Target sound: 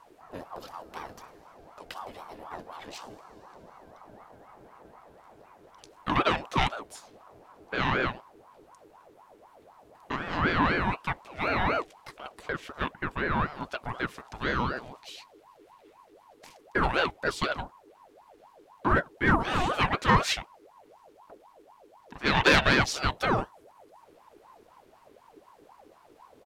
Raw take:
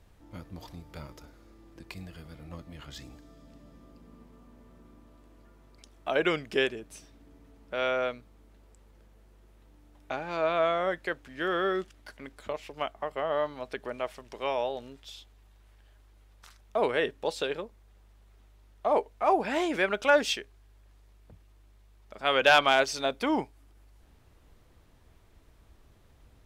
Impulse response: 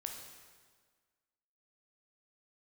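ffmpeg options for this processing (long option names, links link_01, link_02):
-filter_complex "[0:a]asplit=2[link_01][link_02];[link_02]asetrate=37084,aresample=44100,atempo=1.18921,volume=-8dB[link_03];[link_01][link_03]amix=inputs=2:normalize=0,aeval=exprs='(tanh(5.01*val(0)+0.3)-tanh(0.3))/5.01':channel_layout=same,aeval=exprs='val(0)*sin(2*PI*700*n/s+700*0.5/4*sin(2*PI*4*n/s))':channel_layout=same,volume=5dB"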